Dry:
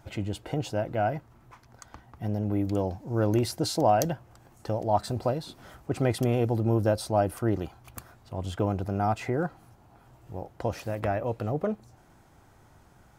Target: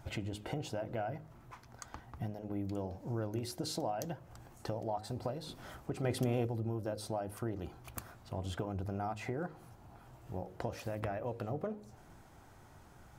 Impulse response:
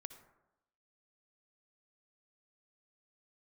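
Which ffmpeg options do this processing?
-filter_complex "[0:a]flanger=delay=0.1:depth=5.4:regen=89:speed=0.91:shape=sinusoidal,acompressor=threshold=-39dB:ratio=6,bandreject=frequency=52.1:width_type=h:width=4,bandreject=frequency=104.2:width_type=h:width=4,bandreject=frequency=156.3:width_type=h:width=4,bandreject=frequency=208.4:width_type=h:width=4,bandreject=frequency=260.5:width_type=h:width=4,bandreject=frequency=312.6:width_type=h:width=4,bandreject=frequency=364.7:width_type=h:width=4,bandreject=frequency=416.8:width_type=h:width=4,bandreject=frequency=468.9:width_type=h:width=4,bandreject=frequency=521:width_type=h:width=4,bandreject=frequency=573.1:width_type=h:width=4,asettb=1/sr,asplit=3[link_01][link_02][link_03];[link_01]atrim=end=6.044[link_04];[link_02]atrim=start=6.04:end=6.47,asetpts=PTS-STARTPTS,afade=type=in:duration=0.004:curve=qsin,afade=type=out:start_time=0.426:duration=0.004:curve=qsin,acontrast=37[link_05];[link_03]atrim=start=6.466[link_06];[link_04][link_05]acrossfade=duration=0.004:curve1=hsin:curve2=qsin[link_07];[link_07][link_06]acrossfade=duration=0.004:curve1=qsin:curve2=hsin,asplit=2[link_08][link_09];[1:a]atrim=start_sample=2205[link_10];[link_09][link_10]afir=irnorm=-1:irlink=0,volume=-8dB[link_11];[link_08][link_11]amix=inputs=2:normalize=0,volume=2.5dB"

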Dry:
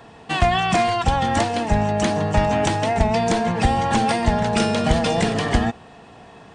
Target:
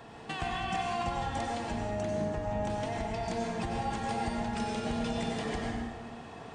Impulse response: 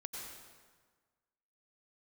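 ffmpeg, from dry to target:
-filter_complex "[0:a]asettb=1/sr,asplit=3[link_01][link_02][link_03];[link_01]atrim=end=2.004[link_04];[link_02]atrim=start=2:end=2.7,asetpts=PTS-STARTPTS,afade=type=in:duration=0.004:curve=qsin,afade=type=out:start_time=0.696:duration=0.004:curve=qsin,tiltshelf=frequency=970:gain=4.5[link_05];[link_03]atrim=start=2.696[link_06];[link_04][link_05]acrossfade=duration=0.004:curve1=hsin:curve2=qsin[link_07];[link_07][link_06]acrossfade=duration=0.004:curve1=qsin:curve2=hsin,acompressor=threshold=-32dB:ratio=4[link_08];[1:a]atrim=start_sample=2205[link_09];[link_08][link_09]afir=irnorm=-1:irlink=0"

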